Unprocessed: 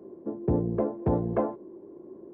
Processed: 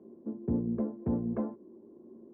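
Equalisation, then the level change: dynamic bell 740 Hz, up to -5 dB, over -42 dBFS, Q 1.6; distance through air 440 m; peaking EQ 230 Hz +14 dB 0.26 oct; -8.0 dB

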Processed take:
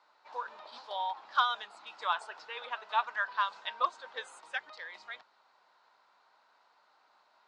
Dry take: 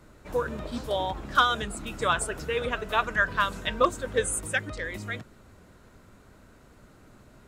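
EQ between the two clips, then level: resonant high-pass 880 Hz, resonance Q 4.2; four-pole ladder low-pass 5.1 kHz, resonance 55%; -2.5 dB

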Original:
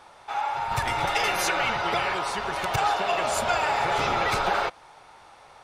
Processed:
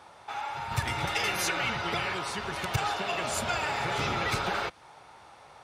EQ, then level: high-pass 69 Hz; bass shelf 240 Hz +5.5 dB; dynamic bell 740 Hz, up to -7 dB, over -37 dBFS, Q 0.82; -2.0 dB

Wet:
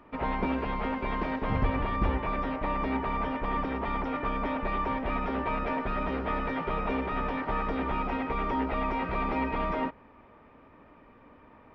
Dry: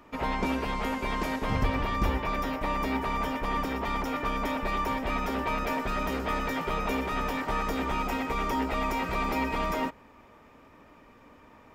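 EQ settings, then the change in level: Gaussian low-pass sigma 2.7 samples; 0.0 dB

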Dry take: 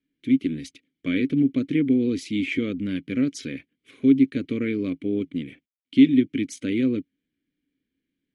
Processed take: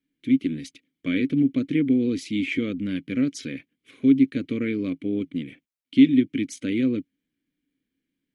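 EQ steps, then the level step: peaking EQ 74 Hz -5 dB 0.5 oct; peaking EQ 400 Hz -3.5 dB 0.21 oct; 0.0 dB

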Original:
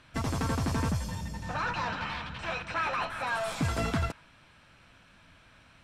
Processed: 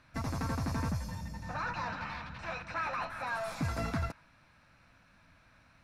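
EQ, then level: graphic EQ with 31 bands 400 Hz -8 dB, 3.15 kHz -11 dB, 8 kHz -8 dB; -4.0 dB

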